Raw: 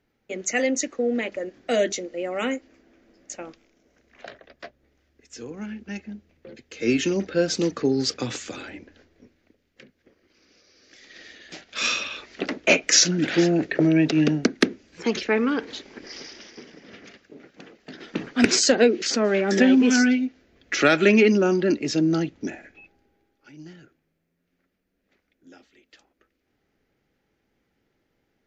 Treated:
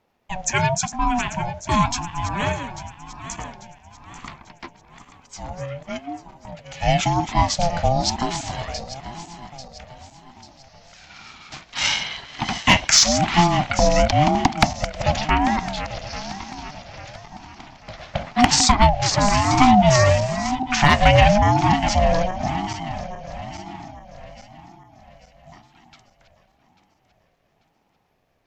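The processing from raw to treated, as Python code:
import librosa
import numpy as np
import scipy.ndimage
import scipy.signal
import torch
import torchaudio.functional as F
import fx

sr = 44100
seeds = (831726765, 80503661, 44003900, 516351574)

y = fx.reverse_delay_fb(x, sr, ms=421, feedback_pct=65, wet_db=-11.0)
y = np.clip(y, -10.0 ** (-8.0 / 20.0), 10.0 ** (-8.0 / 20.0))
y = fx.ring_lfo(y, sr, carrier_hz=430.0, swing_pct=20, hz=0.97)
y = y * 10.0 ** (6.0 / 20.0)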